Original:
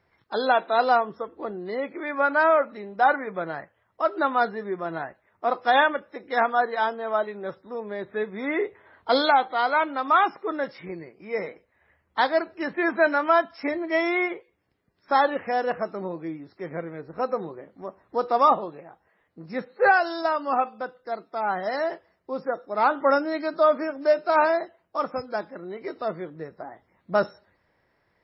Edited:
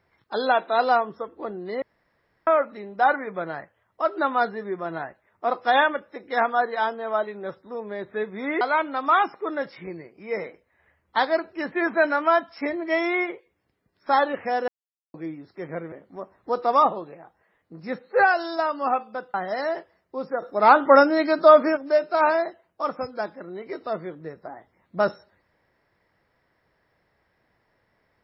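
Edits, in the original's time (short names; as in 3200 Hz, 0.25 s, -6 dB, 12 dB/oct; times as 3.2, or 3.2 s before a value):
1.82–2.47 room tone
8.61–9.63 cut
15.7–16.16 mute
16.94–17.58 cut
21–21.49 cut
22.57–23.92 gain +6.5 dB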